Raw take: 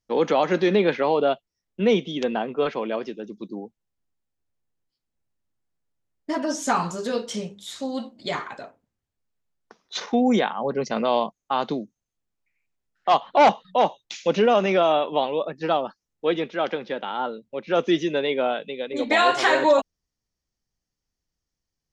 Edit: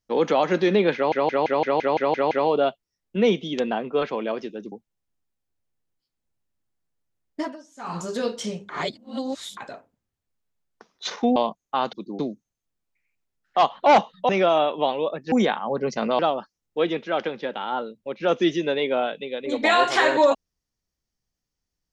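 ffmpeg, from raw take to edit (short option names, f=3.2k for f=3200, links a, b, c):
-filter_complex "[0:a]asplit=20[a][b][c][d][e][f][g][h][i][j][k][l][m][n][o][p][q][r][s][t];[a]atrim=end=1.122[u];[b]atrim=start=0.948:end=1.122[v];[c]atrim=start=0.948:end=1.122[w];[d]atrim=start=0.948:end=1.122[x];[e]atrim=start=0.948:end=1.122[y];[f]atrim=start=0.948:end=1.122[z];[g]atrim=start=0.948:end=1.122[aa];[h]atrim=start=0.948:end=1.122[ab];[i]atrim=start=0.948:end=3.362[ac];[j]atrim=start=3.618:end=6.55,asetpts=PTS-STARTPTS,afade=t=out:st=2.682:d=0.25:c=qua:silence=0.0630957[ad];[k]atrim=start=6.55:end=6.64,asetpts=PTS-STARTPTS,volume=-24dB[ae];[l]atrim=start=6.64:end=7.592,asetpts=PTS-STARTPTS,afade=t=in:d=0.25:c=qua:silence=0.0630957[af];[m]atrim=start=7.588:end=8.472,asetpts=PTS-STARTPTS,areverse[ag];[n]atrim=start=8.468:end=10.262[ah];[o]atrim=start=11.128:end=11.702[ai];[p]atrim=start=3.358:end=3.622[aj];[q]atrim=start=11.698:end=13.802[ak];[r]atrim=start=14.628:end=15.662[al];[s]atrim=start=10.258:end=11.132[am];[t]atrim=start=15.658[an];[u][v]acrossfade=d=0.004:c1=hsin:c2=hsin[ao];[ao][w]acrossfade=d=0.004:c1=hsin:c2=hsin[ap];[ap][x]acrossfade=d=0.004:c1=hsin:c2=hsin[aq];[aq][y]acrossfade=d=0.004:c1=hsin:c2=hsin[ar];[ar][z]acrossfade=d=0.004:c1=hsin:c2=hsin[as];[as][aa]acrossfade=d=0.004:c1=hsin:c2=hsin[at];[at][ab]acrossfade=d=0.004:c1=hsin:c2=hsin[au];[au][ac]acrossfade=d=0.004:c1=hsin:c2=hsin[av];[ad][ae][af]concat=n=3:v=0:a=1[aw];[av][aw]acrossfade=d=0.004:c1=hsin:c2=hsin[ax];[ax][ag]acrossfade=d=0.004:c1=hsin:c2=hsin[ay];[ay][ah]acrossfade=d=0.004:c1=hsin:c2=hsin[az];[az][ai]acrossfade=d=0.004:c1=hsin:c2=hsin[ba];[ba][aj]acrossfade=d=0.004:c1=hsin:c2=hsin[bb];[bb][ak]acrossfade=d=0.004:c1=hsin:c2=hsin[bc];[bc][al]acrossfade=d=0.004:c1=hsin:c2=hsin[bd];[bd][am]acrossfade=d=0.004:c1=hsin:c2=hsin[be];[be][an]acrossfade=d=0.004:c1=hsin:c2=hsin"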